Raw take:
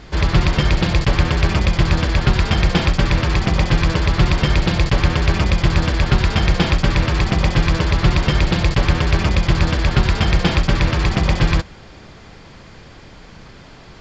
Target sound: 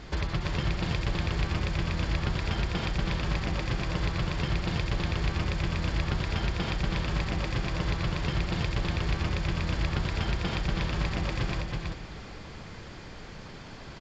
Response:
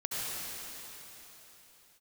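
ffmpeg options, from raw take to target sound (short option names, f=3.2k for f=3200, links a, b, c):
-filter_complex "[0:a]acompressor=threshold=-23dB:ratio=6,aecho=1:1:325:0.668,asplit=2[a][b];[1:a]atrim=start_sample=2205[c];[b][c]afir=irnorm=-1:irlink=0,volume=-17dB[d];[a][d]amix=inputs=2:normalize=0,volume=-5.5dB"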